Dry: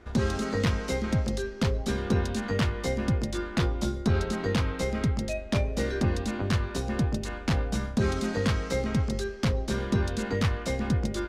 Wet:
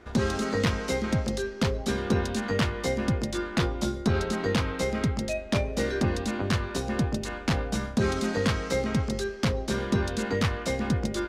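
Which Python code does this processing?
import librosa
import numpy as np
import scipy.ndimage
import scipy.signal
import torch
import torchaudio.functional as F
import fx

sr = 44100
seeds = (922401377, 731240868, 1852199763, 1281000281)

y = fx.low_shelf(x, sr, hz=110.0, db=-7.5)
y = y * librosa.db_to_amplitude(2.5)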